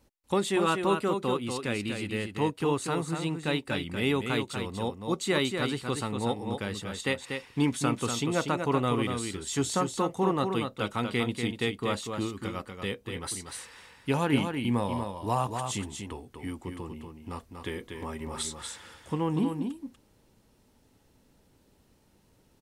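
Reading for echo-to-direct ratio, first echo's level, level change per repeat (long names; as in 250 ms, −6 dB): −6.0 dB, −6.0 dB, repeats not evenly spaced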